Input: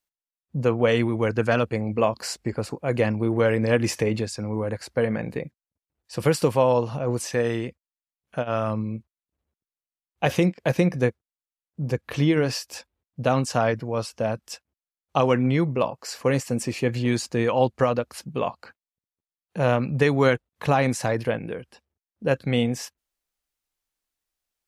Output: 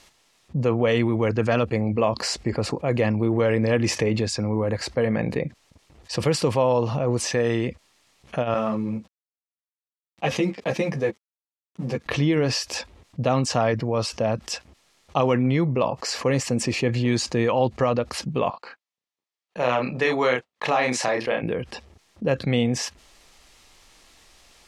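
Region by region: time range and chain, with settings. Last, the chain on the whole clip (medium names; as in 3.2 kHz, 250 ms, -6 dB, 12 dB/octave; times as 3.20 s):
8.54–12.06 s: companding laws mixed up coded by A + high-pass 130 Hz + three-phase chorus
18.50–21.43 s: frequency weighting A + expander -36 dBFS + doubling 32 ms -4.5 dB
whole clip: low-pass 6.5 kHz 12 dB/octave; band-stop 1.5 kHz, Q 9.4; level flattener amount 50%; trim -2 dB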